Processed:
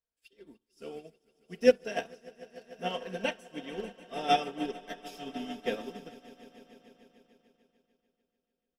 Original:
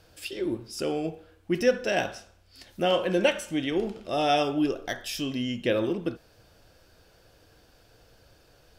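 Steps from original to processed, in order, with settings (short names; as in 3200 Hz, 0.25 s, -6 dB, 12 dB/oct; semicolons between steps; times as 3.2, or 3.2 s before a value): comb 4.4 ms, depth 78%; swelling echo 0.148 s, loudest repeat 5, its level -13 dB; upward expander 2.5:1, over -42 dBFS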